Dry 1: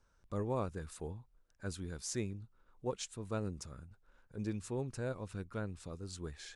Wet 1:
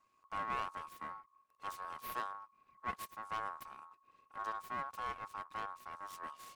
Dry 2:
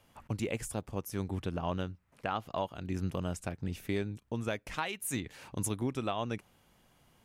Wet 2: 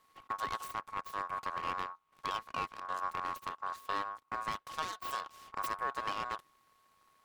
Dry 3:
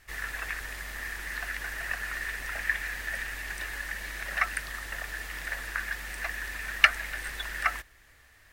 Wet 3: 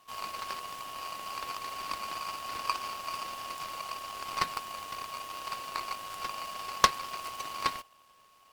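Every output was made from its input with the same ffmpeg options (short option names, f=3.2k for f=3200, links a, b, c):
-af "aeval=exprs='abs(val(0))':c=same,aeval=exprs='val(0)*sin(2*PI*1100*n/s)':c=same"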